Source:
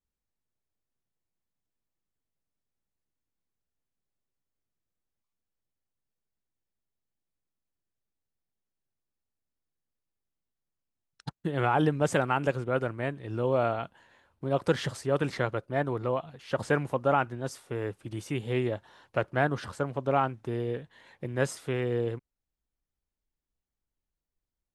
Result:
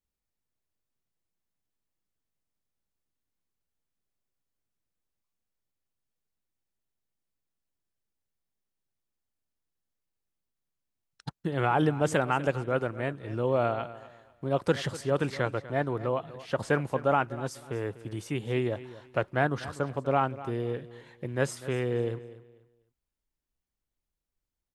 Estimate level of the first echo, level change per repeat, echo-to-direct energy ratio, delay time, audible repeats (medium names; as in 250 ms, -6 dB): -16.5 dB, -11.5 dB, -16.0 dB, 246 ms, 2